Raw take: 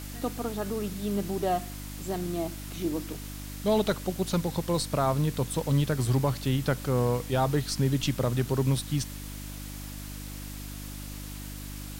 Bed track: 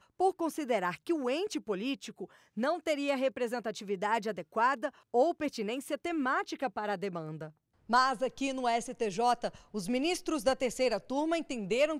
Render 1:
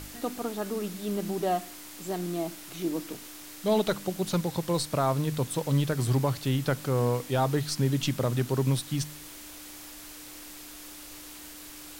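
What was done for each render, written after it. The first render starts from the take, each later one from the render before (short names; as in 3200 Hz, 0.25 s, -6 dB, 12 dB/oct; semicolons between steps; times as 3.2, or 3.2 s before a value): de-hum 50 Hz, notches 5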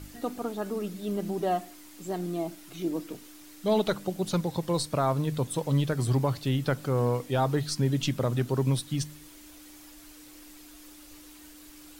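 denoiser 8 dB, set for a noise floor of -45 dBFS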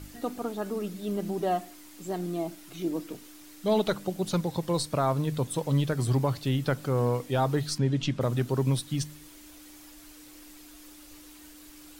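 7.78–8.21 air absorption 81 m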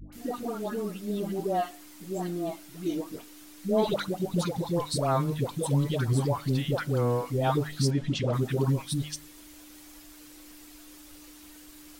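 dispersion highs, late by 0.126 s, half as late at 750 Hz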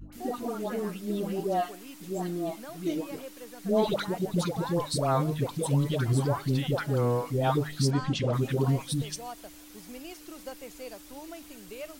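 add bed track -13 dB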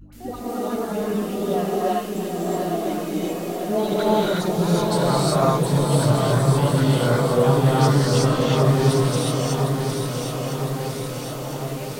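swung echo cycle 1.008 s, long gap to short 3:1, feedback 63%, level -7 dB; non-linear reverb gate 0.4 s rising, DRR -6.5 dB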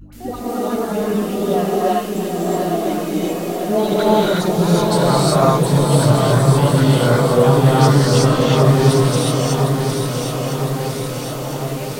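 gain +5 dB; limiter -1 dBFS, peak gain reduction 1 dB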